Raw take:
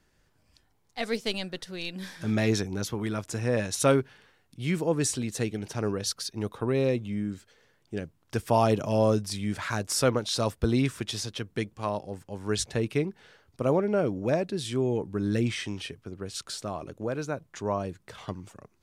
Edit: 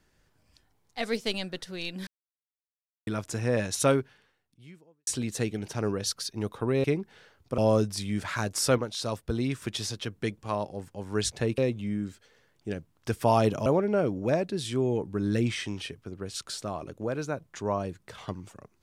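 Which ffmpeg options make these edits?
ffmpeg -i in.wav -filter_complex "[0:a]asplit=10[link_01][link_02][link_03][link_04][link_05][link_06][link_07][link_08][link_09][link_10];[link_01]atrim=end=2.07,asetpts=PTS-STARTPTS,afade=type=out:start_time=2.066:duration=0.004:curve=hsin[link_11];[link_02]atrim=start=2.07:end=3.07,asetpts=PTS-STARTPTS,volume=0[link_12];[link_03]atrim=start=3.07:end=5.07,asetpts=PTS-STARTPTS,afade=type=in:duration=0.004:curve=hsin,afade=type=out:start_time=0.74:duration=1.26:curve=qua[link_13];[link_04]atrim=start=5.07:end=6.842,asetpts=PTS-STARTPTS,afade=type=in:duration=0.004:curve=hsin[link_14];[link_05]atrim=start=12.918:end=13.662[link_15];[link_06]atrim=start=8.918:end=10.122[link_16];[link_07]atrim=start=10.118:end=10.962,asetpts=PTS-STARTPTS,volume=-4.5dB[link_17];[link_08]atrim=start=10.958:end=12.922[link_18];[link_09]atrim=start=6.838:end=8.922[link_19];[link_10]atrim=start=13.658[link_20];[link_11][link_12][link_13][link_14]concat=n=4:v=0:a=1[link_21];[link_21][link_15]acrossfade=duration=0.004:curve1=hsin:curve2=hsin[link_22];[link_22][link_16]acrossfade=duration=0.004:curve1=hsin:curve2=hsin[link_23];[link_23][link_17]acrossfade=duration=0.004:curve1=hsin:curve2=hsin[link_24];[link_24][link_18]acrossfade=duration=0.004:curve1=hsin:curve2=hsin[link_25];[link_25][link_19]acrossfade=duration=0.004:curve1=hsin:curve2=hsin[link_26];[link_26][link_20]acrossfade=duration=0.004:curve1=hsin:curve2=hsin" out.wav

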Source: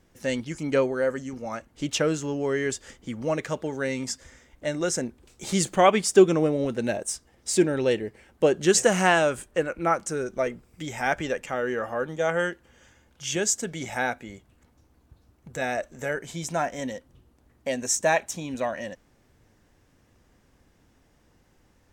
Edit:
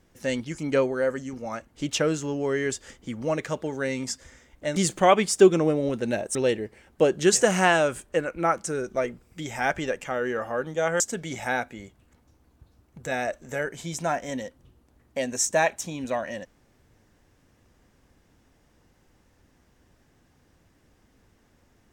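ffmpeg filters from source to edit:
ffmpeg -i in.wav -filter_complex "[0:a]asplit=4[link_01][link_02][link_03][link_04];[link_01]atrim=end=4.762[link_05];[link_02]atrim=start=5.518:end=7.112[link_06];[link_03]atrim=start=7.768:end=12.422[link_07];[link_04]atrim=start=13.498[link_08];[link_05][link_06]acrossfade=duration=0.004:curve1=hsin:curve2=hsin[link_09];[link_09][link_07]acrossfade=duration=0.004:curve1=hsin:curve2=hsin[link_10];[link_10][link_08]acrossfade=duration=0.004:curve1=hsin:curve2=hsin" out.wav

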